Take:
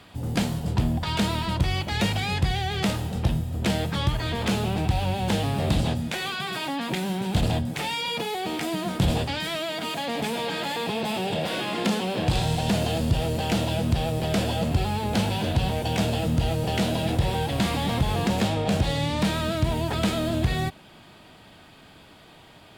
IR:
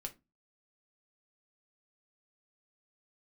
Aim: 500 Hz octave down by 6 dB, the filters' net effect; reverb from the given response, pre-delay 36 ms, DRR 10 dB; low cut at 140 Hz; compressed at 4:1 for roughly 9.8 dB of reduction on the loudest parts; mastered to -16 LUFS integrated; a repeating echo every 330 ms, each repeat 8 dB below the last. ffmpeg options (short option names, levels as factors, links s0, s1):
-filter_complex "[0:a]highpass=140,equalizer=f=500:t=o:g=-8,acompressor=threshold=0.02:ratio=4,aecho=1:1:330|660|990|1320|1650:0.398|0.159|0.0637|0.0255|0.0102,asplit=2[s0][s1];[1:a]atrim=start_sample=2205,adelay=36[s2];[s1][s2]afir=irnorm=-1:irlink=0,volume=0.422[s3];[s0][s3]amix=inputs=2:normalize=0,volume=8.91"